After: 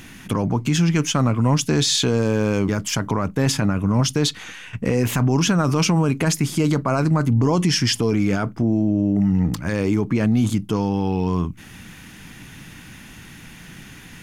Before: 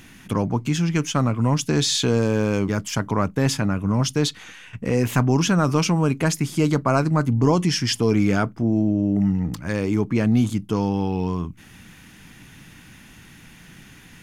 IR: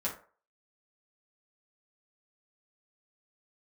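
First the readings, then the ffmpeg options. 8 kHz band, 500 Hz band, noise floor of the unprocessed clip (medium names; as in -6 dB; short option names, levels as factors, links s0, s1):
+3.0 dB, +0.5 dB, -47 dBFS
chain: -af "alimiter=limit=0.168:level=0:latency=1:release=40,volume=1.78"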